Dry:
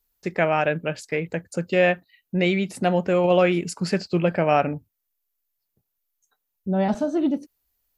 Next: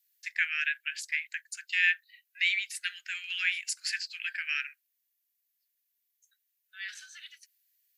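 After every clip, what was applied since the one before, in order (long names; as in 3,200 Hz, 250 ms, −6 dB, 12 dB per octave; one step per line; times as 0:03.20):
Butterworth high-pass 1,600 Hz 72 dB per octave
level +1 dB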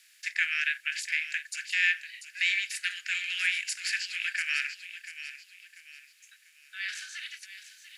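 compressor on every frequency bin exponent 0.6
on a send: delay with a high-pass on its return 691 ms, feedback 35%, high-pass 2,000 Hz, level −10 dB
on the sum: level −2 dB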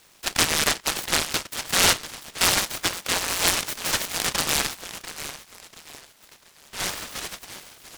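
high-frequency loss of the air 64 metres
short delay modulated by noise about 1,500 Hz, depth 0.2 ms
level +7.5 dB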